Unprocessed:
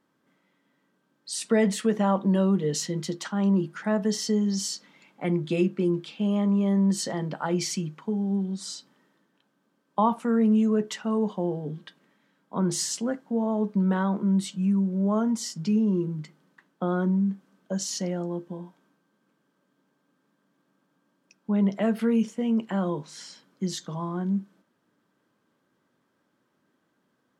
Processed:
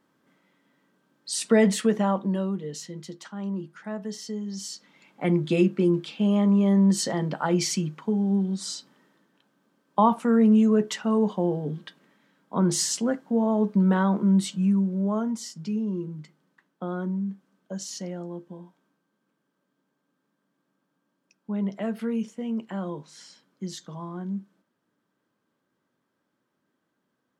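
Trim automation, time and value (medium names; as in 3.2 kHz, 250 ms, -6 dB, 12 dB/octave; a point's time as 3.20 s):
1.79 s +3 dB
2.69 s -8.5 dB
4.46 s -8.5 dB
5.26 s +3 dB
14.53 s +3 dB
15.54 s -5 dB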